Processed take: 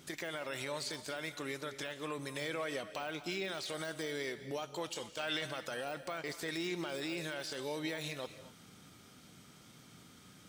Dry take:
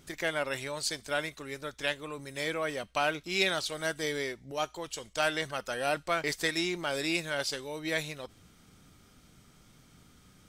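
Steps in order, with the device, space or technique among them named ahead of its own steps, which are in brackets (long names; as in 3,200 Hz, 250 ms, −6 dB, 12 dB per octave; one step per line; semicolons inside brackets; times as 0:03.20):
broadcast voice chain (high-pass filter 120 Hz 12 dB per octave; de-essing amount 95%; downward compressor, threshold −33 dBFS, peak gain reduction 8.5 dB; parametric band 3,500 Hz +2 dB; brickwall limiter −30.5 dBFS, peak gain reduction 10.5 dB)
0:05.02–0:05.46: dynamic equaliser 2,900 Hz, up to +7 dB, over −57 dBFS, Q 0.88
reverb whose tail is shaped and stops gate 270 ms rising, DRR 12 dB
level +2 dB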